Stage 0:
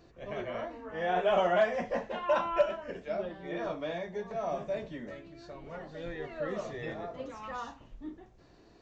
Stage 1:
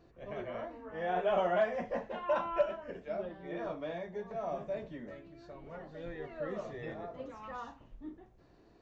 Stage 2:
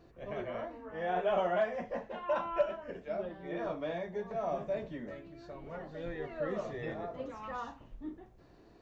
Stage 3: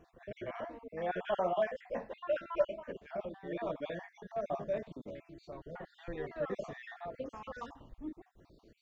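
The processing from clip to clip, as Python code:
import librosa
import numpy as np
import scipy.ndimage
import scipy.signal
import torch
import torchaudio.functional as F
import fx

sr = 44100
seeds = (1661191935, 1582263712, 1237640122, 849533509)

y1 = fx.high_shelf(x, sr, hz=2900.0, db=-8.0)
y1 = y1 * librosa.db_to_amplitude(-3.0)
y2 = fx.rider(y1, sr, range_db=3, speed_s=2.0)
y3 = fx.spec_dropout(y2, sr, seeds[0], share_pct=40)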